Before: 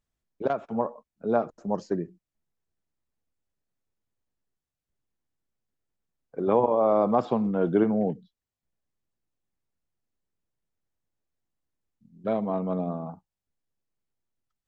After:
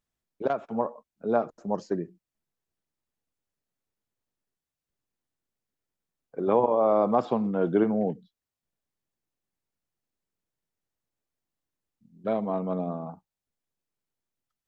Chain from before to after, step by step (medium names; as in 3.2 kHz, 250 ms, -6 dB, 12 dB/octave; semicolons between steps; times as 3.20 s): bass shelf 110 Hz -7 dB